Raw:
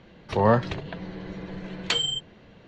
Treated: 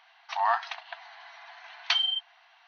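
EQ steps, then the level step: brick-wall FIR band-pass 660–6400 Hz; 0.0 dB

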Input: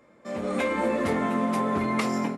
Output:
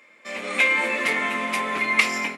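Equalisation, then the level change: Bessel high-pass 300 Hz, order 2; peaking EQ 1.2 kHz +13.5 dB 0.93 oct; resonant high shelf 1.7 kHz +10.5 dB, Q 3; -3.5 dB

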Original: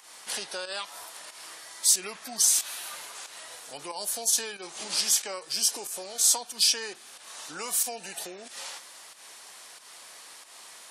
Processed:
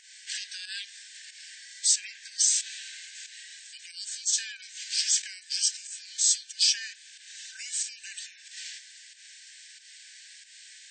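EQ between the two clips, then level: brick-wall FIR band-pass 1.5–8.6 kHz; 0.0 dB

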